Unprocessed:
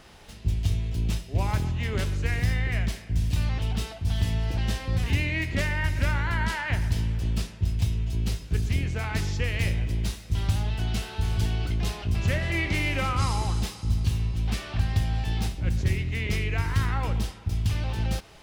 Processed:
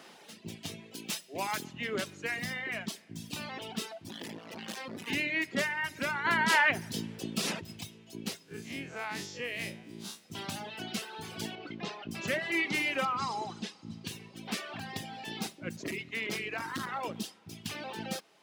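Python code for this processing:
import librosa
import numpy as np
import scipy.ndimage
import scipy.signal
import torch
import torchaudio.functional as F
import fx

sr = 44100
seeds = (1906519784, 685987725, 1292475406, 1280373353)

y = fx.tilt_eq(x, sr, slope=2.0, at=(0.95, 1.73))
y = fx.clip_hard(y, sr, threshold_db=-29.5, at=(4.08, 5.08))
y = fx.env_flatten(y, sr, amount_pct=70, at=(6.24, 7.8), fade=0.02)
y = fx.spec_blur(y, sr, span_ms=92.0, at=(8.43, 10.22), fade=0.02)
y = fx.air_absorb(y, sr, metres=130.0, at=(11.55, 12.11))
y = fx.air_absorb(y, sr, metres=96.0, at=(13.05, 14.07))
y = fx.clip_hard(y, sr, threshold_db=-22.0, at=(15.76, 17.16))
y = scipy.signal.sosfilt(scipy.signal.butter(4, 200.0, 'highpass', fs=sr, output='sos'), y)
y = fx.dereverb_blind(y, sr, rt60_s=2.0)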